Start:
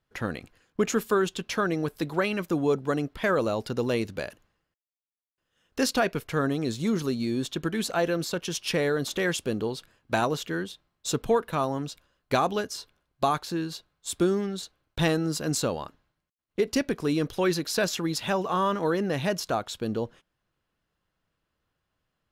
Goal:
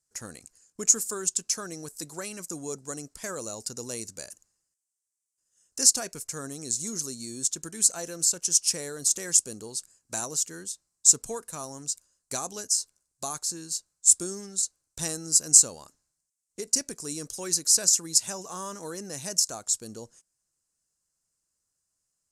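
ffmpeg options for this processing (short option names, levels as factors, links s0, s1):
-af "aexciter=amount=15.3:drive=4.5:freq=5100,lowpass=f=7900:t=q:w=2.4,volume=0.237"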